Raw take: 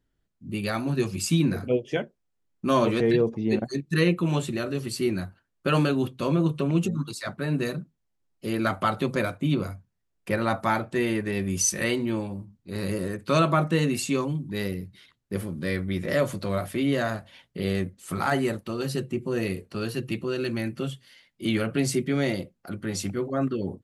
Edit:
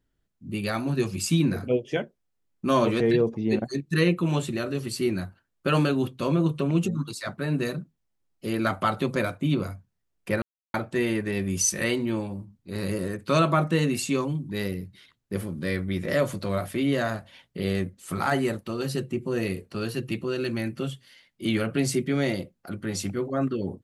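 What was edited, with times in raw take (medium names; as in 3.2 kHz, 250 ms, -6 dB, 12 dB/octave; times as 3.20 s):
10.42–10.74 s: mute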